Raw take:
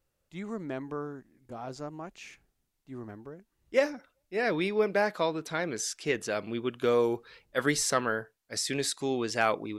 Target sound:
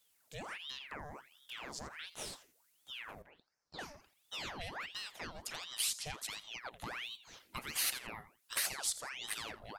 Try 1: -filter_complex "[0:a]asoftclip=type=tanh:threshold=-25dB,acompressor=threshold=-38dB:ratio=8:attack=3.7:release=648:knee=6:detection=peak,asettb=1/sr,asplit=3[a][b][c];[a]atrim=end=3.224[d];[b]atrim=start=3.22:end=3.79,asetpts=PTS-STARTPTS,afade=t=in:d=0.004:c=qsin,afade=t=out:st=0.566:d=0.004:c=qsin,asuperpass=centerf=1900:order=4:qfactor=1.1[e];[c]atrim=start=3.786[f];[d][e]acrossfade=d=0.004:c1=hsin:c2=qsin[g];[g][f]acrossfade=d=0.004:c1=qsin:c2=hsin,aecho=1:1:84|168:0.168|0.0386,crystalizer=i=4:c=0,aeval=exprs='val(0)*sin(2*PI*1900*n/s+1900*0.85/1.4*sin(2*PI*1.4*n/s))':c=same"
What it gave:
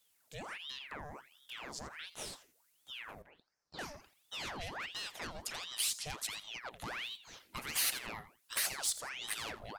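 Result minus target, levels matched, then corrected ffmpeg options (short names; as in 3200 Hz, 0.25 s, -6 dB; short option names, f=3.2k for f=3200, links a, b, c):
soft clip: distortion +9 dB
-filter_complex "[0:a]asoftclip=type=tanh:threshold=-16.5dB,acompressor=threshold=-38dB:ratio=8:attack=3.7:release=648:knee=6:detection=peak,asettb=1/sr,asplit=3[a][b][c];[a]atrim=end=3.224[d];[b]atrim=start=3.22:end=3.79,asetpts=PTS-STARTPTS,afade=t=in:d=0.004:c=qsin,afade=t=out:st=0.566:d=0.004:c=qsin,asuperpass=centerf=1900:order=4:qfactor=1.1[e];[c]atrim=start=3.786[f];[d][e]acrossfade=d=0.004:c1=hsin:c2=qsin[g];[g][f]acrossfade=d=0.004:c1=qsin:c2=hsin,aecho=1:1:84|168:0.168|0.0386,crystalizer=i=4:c=0,aeval=exprs='val(0)*sin(2*PI*1900*n/s+1900*0.85/1.4*sin(2*PI*1.4*n/s))':c=same"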